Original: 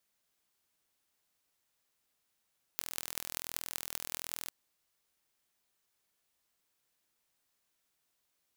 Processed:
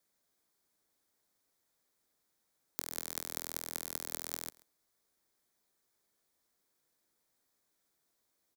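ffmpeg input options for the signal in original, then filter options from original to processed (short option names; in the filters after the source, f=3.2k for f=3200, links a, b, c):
-f lavfi -i "aevalsrc='0.473*eq(mod(n,1068),0)*(0.5+0.5*eq(mod(n,8544),0))':d=1.71:s=44100"
-filter_complex "[0:a]equalizer=f=2.8k:t=o:w=0.3:g=-11,aecho=1:1:134:0.0708,acrossover=split=220|530|3700[a][b][c][d];[b]acontrast=65[e];[a][e][c][d]amix=inputs=4:normalize=0"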